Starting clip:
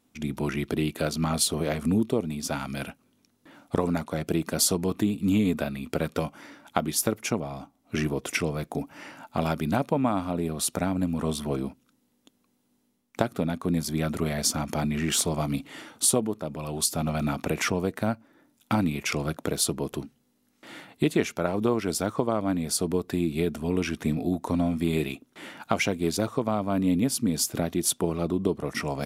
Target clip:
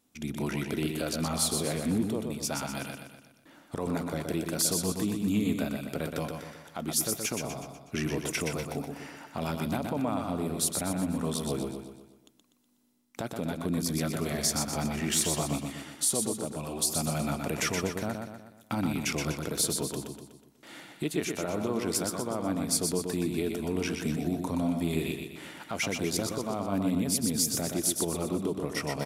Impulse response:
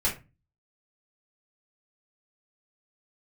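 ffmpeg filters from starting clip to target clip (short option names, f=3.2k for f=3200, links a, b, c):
-af "alimiter=limit=-16.5dB:level=0:latency=1:release=33,bass=f=250:g=-1,treble=f=4k:g=5,aecho=1:1:123|246|369|492|615|738:0.562|0.27|0.13|0.0622|0.0299|0.0143,volume=-4dB"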